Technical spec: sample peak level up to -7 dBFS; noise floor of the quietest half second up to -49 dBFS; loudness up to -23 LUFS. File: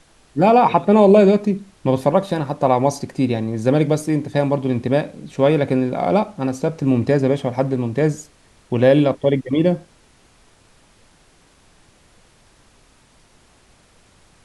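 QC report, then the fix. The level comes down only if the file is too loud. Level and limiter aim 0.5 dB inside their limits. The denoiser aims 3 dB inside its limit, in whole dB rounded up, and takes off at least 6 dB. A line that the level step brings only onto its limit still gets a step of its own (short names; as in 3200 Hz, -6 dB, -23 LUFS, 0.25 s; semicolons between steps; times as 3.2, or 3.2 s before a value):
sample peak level -2.0 dBFS: fail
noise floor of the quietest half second -54 dBFS: OK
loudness -18.0 LUFS: fail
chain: gain -5.5 dB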